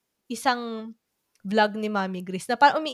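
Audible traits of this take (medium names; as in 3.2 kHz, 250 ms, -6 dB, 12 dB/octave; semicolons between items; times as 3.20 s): noise floor -79 dBFS; spectral tilt -2.5 dB/octave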